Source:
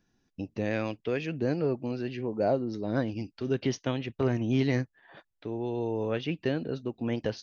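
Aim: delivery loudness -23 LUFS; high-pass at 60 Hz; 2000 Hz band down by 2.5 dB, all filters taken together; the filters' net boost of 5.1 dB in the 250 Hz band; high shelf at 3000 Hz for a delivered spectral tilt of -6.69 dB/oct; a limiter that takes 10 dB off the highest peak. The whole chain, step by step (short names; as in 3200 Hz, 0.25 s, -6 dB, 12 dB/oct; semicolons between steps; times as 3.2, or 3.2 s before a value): HPF 60 Hz; bell 250 Hz +6 dB; bell 2000 Hz -6.5 dB; high shelf 3000 Hz +8 dB; gain +9 dB; limiter -13 dBFS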